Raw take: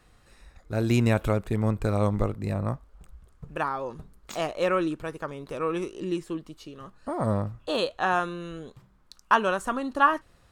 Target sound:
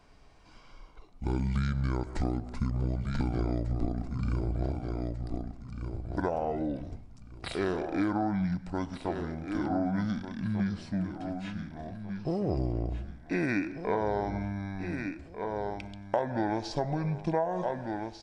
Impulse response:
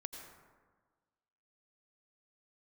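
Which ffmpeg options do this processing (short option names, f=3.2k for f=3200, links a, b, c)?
-filter_complex "[0:a]aecho=1:1:862|1724|2586:0.282|0.0761|0.0205,asetrate=25442,aresample=44100,asplit=2[a][b];[1:a]atrim=start_sample=2205,afade=t=out:st=0.28:d=0.01,atrim=end_sample=12789[c];[b][c]afir=irnorm=-1:irlink=0,volume=-7.5dB[d];[a][d]amix=inputs=2:normalize=0,acompressor=threshold=-24dB:ratio=8,volume=-1dB"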